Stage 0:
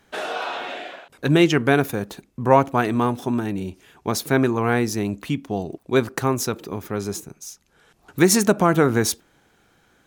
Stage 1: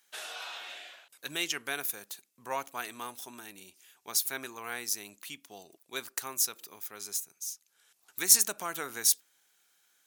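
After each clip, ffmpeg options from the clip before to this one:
-af "aderivative"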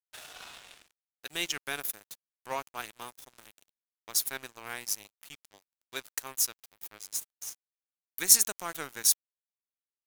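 -af "aeval=exprs='sgn(val(0))*max(abs(val(0))-0.00794,0)':c=same,volume=1.5dB"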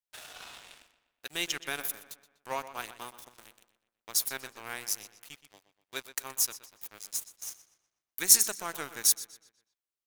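-filter_complex "[0:a]asplit=2[a][b];[b]adelay=123,lowpass=f=4.7k:p=1,volume=-13dB,asplit=2[c][d];[d]adelay=123,lowpass=f=4.7k:p=1,volume=0.49,asplit=2[e][f];[f]adelay=123,lowpass=f=4.7k:p=1,volume=0.49,asplit=2[g][h];[h]adelay=123,lowpass=f=4.7k:p=1,volume=0.49,asplit=2[i][j];[j]adelay=123,lowpass=f=4.7k:p=1,volume=0.49[k];[a][c][e][g][i][k]amix=inputs=6:normalize=0"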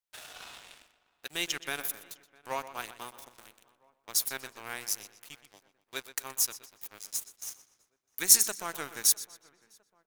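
-filter_complex "[0:a]asplit=2[a][b];[b]adelay=655,lowpass=f=1.8k:p=1,volume=-24dB,asplit=2[c][d];[d]adelay=655,lowpass=f=1.8k:p=1,volume=0.52,asplit=2[e][f];[f]adelay=655,lowpass=f=1.8k:p=1,volume=0.52[g];[a][c][e][g]amix=inputs=4:normalize=0"

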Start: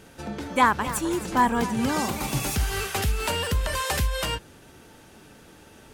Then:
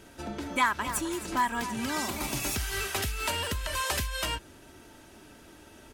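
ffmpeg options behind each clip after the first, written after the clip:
-filter_complex "[0:a]aecho=1:1:3.1:0.4,acrossover=split=1200[a][b];[a]acompressor=threshold=-29dB:ratio=6[c];[c][b]amix=inputs=2:normalize=0,volume=-2.5dB"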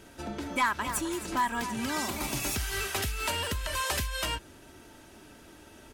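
-af "asoftclip=type=tanh:threshold=-16.5dB"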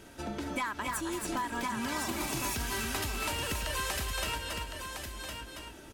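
-filter_complex "[0:a]asplit=2[a][b];[b]aecho=0:1:277:0.422[c];[a][c]amix=inputs=2:normalize=0,acompressor=threshold=-31dB:ratio=6,asplit=2[d][e];[e]aecho=0:1:1060:0.473[f];[d][f]amix=inputs=2:normalize=0"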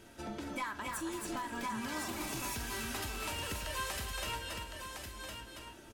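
-filter_complex "[0:a]asplit=2[a][b];[b]adelay=46,volume=-13dB[c];[a][c]amix=inputs=2:normalize=0,asoftclip=type=tanh:threshold=-24dB,flanger=delay=8.5:depth=1.5:regen=71:speed=0.7:shape=triangular"

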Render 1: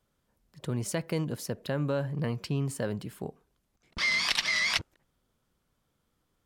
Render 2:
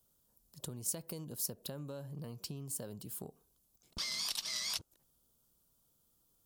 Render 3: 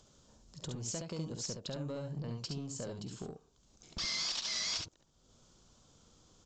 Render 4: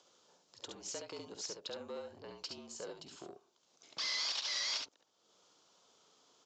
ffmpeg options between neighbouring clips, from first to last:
-af "equalizer=f=2k:w=1.5:g=-12.5,acompressor=threshold=-38dB:ratio=6,aemphasis=mode=production:type=75fm,volume=-3.5dB"
-af "acompressor=mode=upward:threshold=-53dB:ratio=2.5,aresample=16000,asoftclip=type=tanh:threshold=-37dB,aresample=44100,aecho=1:1:51|69:0.224|0.596,volume=4.5dB"
-af "afreqshift=-46,highpass=440,lowpass=5.7k,volume=1dB"

